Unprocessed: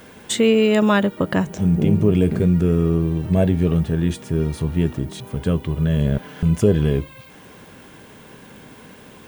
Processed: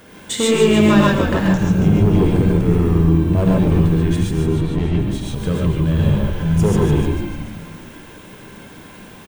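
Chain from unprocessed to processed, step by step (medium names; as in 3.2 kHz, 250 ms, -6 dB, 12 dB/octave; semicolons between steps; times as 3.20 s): 4.31–5.00 s: steep low-pass 4.1 kHz 48 dB/octave; hard clipper -12 dBFS, distortion -16 dB; frequency-shifting echo 149 ms, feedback 62%, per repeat -63 Hz, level -7 dB; gated-style reverb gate 160 ms rising, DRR -2.5 dB; trim -1.5 dB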